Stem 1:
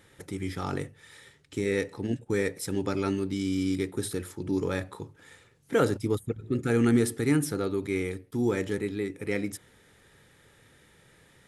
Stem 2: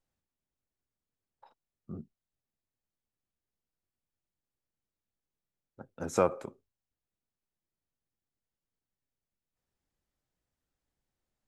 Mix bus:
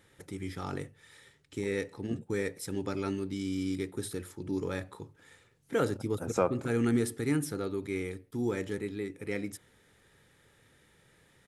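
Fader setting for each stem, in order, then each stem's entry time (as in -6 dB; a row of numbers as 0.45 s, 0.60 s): -5.0 dB, -1.5 dB; 0.00 s, 0.20 s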